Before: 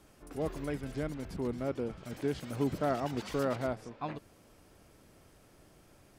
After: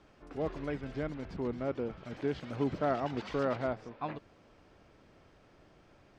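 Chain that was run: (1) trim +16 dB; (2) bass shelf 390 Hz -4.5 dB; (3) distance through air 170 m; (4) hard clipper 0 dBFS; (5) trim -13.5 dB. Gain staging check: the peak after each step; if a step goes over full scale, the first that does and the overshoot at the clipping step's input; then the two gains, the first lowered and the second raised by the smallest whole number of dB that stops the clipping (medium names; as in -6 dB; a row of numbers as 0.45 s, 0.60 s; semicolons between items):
-3.5 dBFS, -4.5 dBFS, -5.0 dBFS, -5.0 dBFS, -18.5 dBFS; nothing clips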